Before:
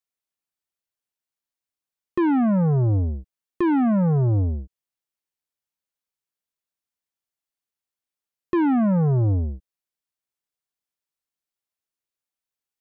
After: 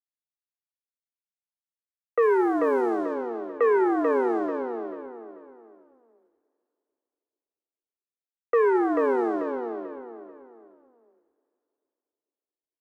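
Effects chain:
adaptive Wiener filter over 41 samples
single-sideband voice off tune +120 Hz 210–2,300 Hz
low-shelf EQ 440 Hz −5.5 dB
in parallel at −2 dB: downward compressor, threshold −38 dBFS, peak gain reduction 16 dB
on the sum: dead-zone distortion −55 dBFS
0:02.22–0:03.14: bit-depth reduction 10 bits, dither none
on a send: repeating echo 439 ms, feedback 33%, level −4 dB
on the sum: low-pass that shuts in the quiet parts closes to 1,800 Hz, open at −19.5 dBFS
coupled-rooms reverb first 0.33 s, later 3 s, from −16 dB, DRR 13 dB
level +1 dB

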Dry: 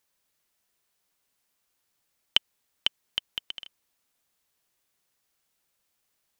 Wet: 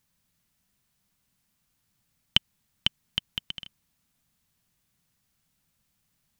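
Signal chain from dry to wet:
low shelf with overshoot 270 Hz +12.5 dB, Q 1.5
level +1 dB

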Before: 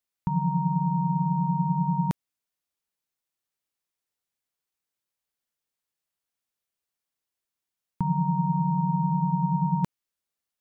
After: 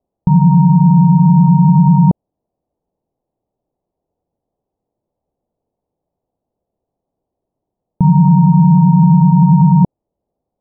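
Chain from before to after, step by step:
Butterworth low-pass 780 Hz 36 dB per octave
boost into a limiter +25 dB
level −1.5 dB

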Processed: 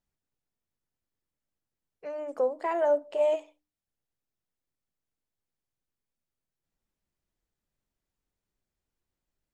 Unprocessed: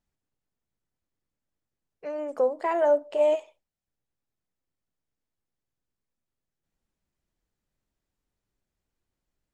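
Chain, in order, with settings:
mains-hum notches 60/120/180/240/300 Hz
level −3 dB

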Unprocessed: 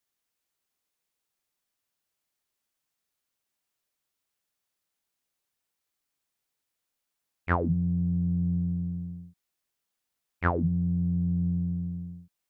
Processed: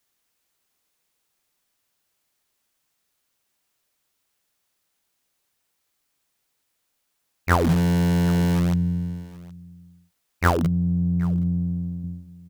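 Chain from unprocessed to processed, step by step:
0:10.54–0:12.04: low-shelf EQ 340 Hz −5.5 dB
in parallel at −8.5 dB: wrap-around overflow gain 23.5 dB
on the sum: single-tap delay 771 ms −21 dB
level +6.5 dB

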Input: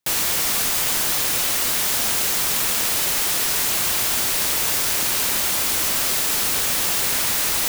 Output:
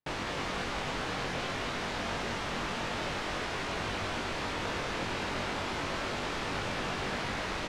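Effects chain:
head-to-tape spacing loss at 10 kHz 35 dB
double-tracking delay 21 ms −4 dB
single-tap delay 202 ms −6 dB
level −3.5 dB

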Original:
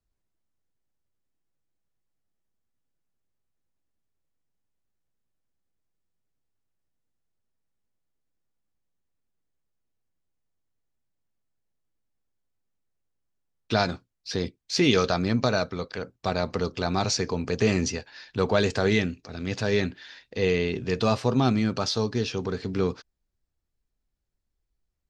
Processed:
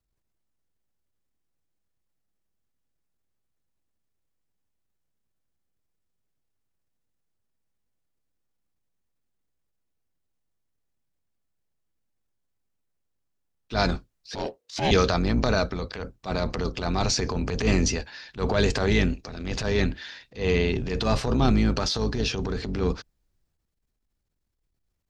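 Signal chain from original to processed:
sub-octave generator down 2 octaves, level −1 dB
transient designer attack −11 dB, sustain +5 dB
0:14.35–0:14.91: ring modulation 480 Hz
level +1 dB

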